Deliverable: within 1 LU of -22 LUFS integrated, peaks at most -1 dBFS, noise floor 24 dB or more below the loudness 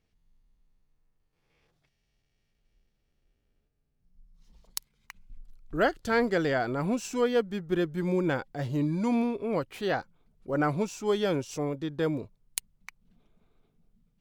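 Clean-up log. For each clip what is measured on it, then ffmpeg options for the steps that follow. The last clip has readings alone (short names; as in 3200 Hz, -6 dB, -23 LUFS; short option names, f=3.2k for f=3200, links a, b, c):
loudness -29.5 LUFS; peak -10.0 dBFS; loudness target -22.0 LUFS
-> -af "volume=7.5dB"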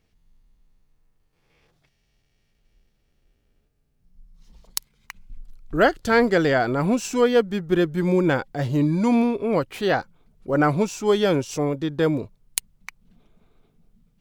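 loudness -22.0 LUFS; peak -2.5 dBFS; noise floor -68 dBFS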